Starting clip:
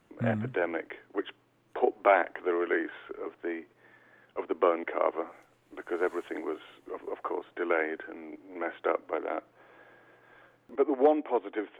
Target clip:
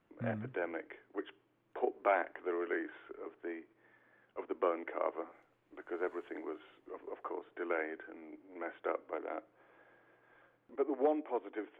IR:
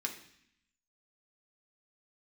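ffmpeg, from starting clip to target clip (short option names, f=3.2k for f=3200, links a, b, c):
-filter_complex "[0:a]bass=f=250:g=0,treble=f=4k:g=-13,asplit=2[a][b];[1:a]atrim=start_sample=2205,asetrate=57330,aresample=44100[c];[b][c]afir=irnorm=-1:irlink=0,volume=-14.5dB[d];[a][d]amix=inputs=2:normalize=0,volume=-8.5dB"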